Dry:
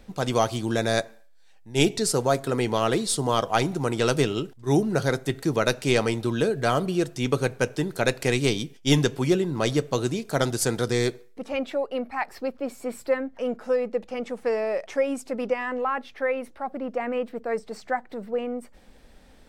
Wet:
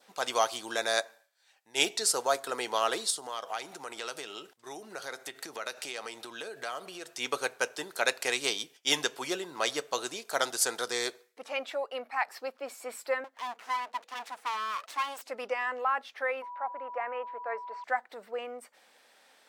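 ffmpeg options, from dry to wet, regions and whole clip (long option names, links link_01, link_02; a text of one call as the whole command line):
ffmpeg -i in.wav -filter_complex "[0:a]asettb=1/sr,asplit=3[link_01][link_02][link_03];[link_01]atrim=end=3.104[link_04];[link_02]atrim=start=3.1:end=7.1,asetpts=PTS-STARTPTS,afade=type=in:duration=0.004:curve=qsin,afade=type=out:start_time=3.996:duration=0.004:curve=qsin,bandreject=frequency=1000:width=23,acompressor=threshold=-28dB:ratio=5:attack=3.2:release=140:knee=1:detection=peak[link_05];[link_03]atrim=start=7.096[link_06];[link_04][link_05]acrossfade=duration=0.004:curve1=hsin:curve2=qsin[link_07];[link_07][link_06]acrossfade=duration=0.004:curve1=qsin:curve2=hsin,asettb=1/sr,asplit=3[link_08][link_09][link_10];[link_08]atrim=end=13.244[link_11];[link_09]atrim=start=13.24:end=15.25,asetpts=PTS-STARTPTS,afade=type=in:duration=0.004:curve=qsin,afade=type=out:start_time=2.006:duration=0.004:curve=qsin,equalizer=frequency=140:width=1.4:gain=-10,aeval=exprs='abs(val(0))':channel_layout=same[link_12];[link_10]atrim=start=15.246[link_13];[link_11][link_12]acrossfade=duration=0.004:curve1=hsin:curve2=qsin[link_14];[link_14][link_13]acrossfade=duration=0.004:curve1=qsin:curve2=hsin,asettb=1/sr,asplit=3[link_15][link_16][link_17];[link_15]atrim=end=16.424[link_18];[link_16]atrim=start=16.42:end=17.84,asetpts=PTS-STARTPTS,afade=type=in:duration=0.004:curve=qsin,afade=type=out:start_time=1.416:duration=0.004:curve=qsin,aeval=exprs='val(0)+0.0141*sin(2*PI*980*n/s)':channel_layout=same,highpass=400,lowpass=2000[link_19];[link_17]atrim=start=17.836[link_20];[link_18][link_19]acrossfade=duration=0.004:curve1=hsin:curve2=qsin[link_21];[link_21][link_20]acrossfade=duration=0.004:curve1=qsin:curve2=hsin,highpass=780,adynamicequalizer=threshold=0.00447:dfrequency=2200:dqfactor=2.3:tfrequency=2200:tqfactor=2.3:attack=5:release=100:ratio=0.375:range=2.5:mode=cutabove:tftype=bell" out.wav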